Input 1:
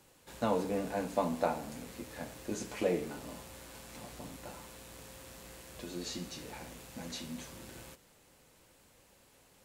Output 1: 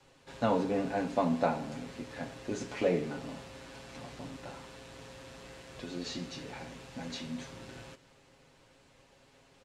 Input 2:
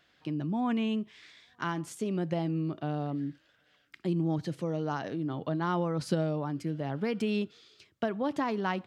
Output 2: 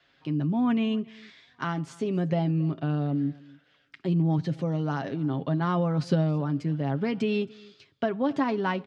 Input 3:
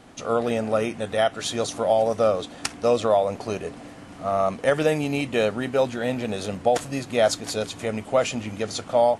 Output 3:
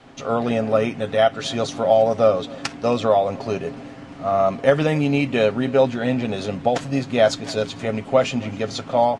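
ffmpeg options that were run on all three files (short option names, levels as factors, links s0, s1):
-filter_complex "[0:a]lowpass=5200,aecho=1:1:7.4:0.45,adynamicequalizer=threshold=0.0112:dfrequency=190:dqfactor=1.7:tfrequency=190:tqfactor=1.7:attack=5:release=100:ratio=0.375:range=2.5:mode=boostabove:tftype=bell,asplit=2[s0][s1];[s1]aecho=0:1:272:0.0668[s2];[s0][s2]amix=inputs=2:normalize=0,volume=1.26"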